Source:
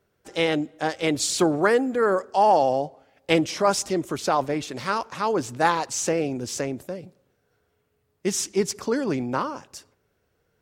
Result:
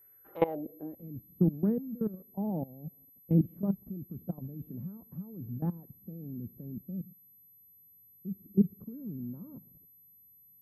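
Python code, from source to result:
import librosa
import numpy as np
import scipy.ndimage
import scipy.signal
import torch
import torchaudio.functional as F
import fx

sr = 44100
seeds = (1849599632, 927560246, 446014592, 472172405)

y = fx.level_steps(x, sr, step_db=20)
y = fx.filter_sweep_lowpass(y, sr, from_hz=2000.0, to_hz=190.0, start_s=0.13, end_s=1.05, q=3.3)
y = y + 10.0 ** (-57.0 / 20.0) * np.sin(2.0 * np.pi * 12000.0 * np.arange(len(y)) / sr)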